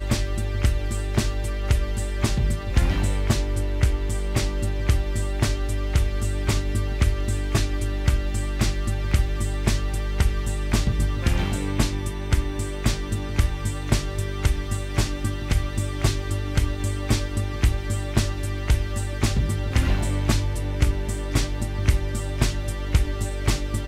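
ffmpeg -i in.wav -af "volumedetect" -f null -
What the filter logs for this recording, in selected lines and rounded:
mean_volume: -22.6 dB
max_volume: -5.3 dB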